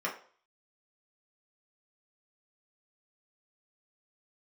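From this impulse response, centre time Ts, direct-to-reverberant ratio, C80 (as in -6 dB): 20 ms, -3.5 dB, 14.5 dB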